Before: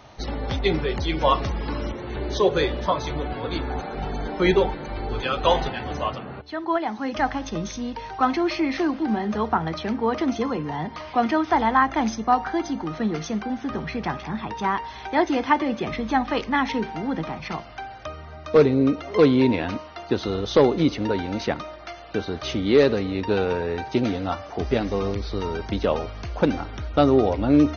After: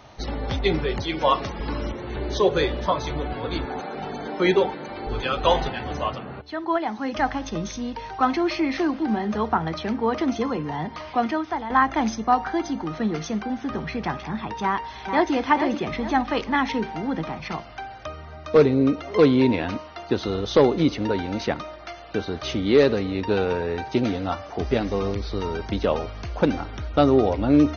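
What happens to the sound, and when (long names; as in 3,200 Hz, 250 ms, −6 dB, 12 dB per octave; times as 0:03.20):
0:01.01–0:01.60: high-pass filter 180 Hz 6 dB per octave
0:03.65–0:05.07: high-pass filter 170 Hz
0:11.08–0:11.70: fade out, to −12.5 dB
0:14.63–0:15.33: delay throw 440 ms, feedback 40%, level −7 dB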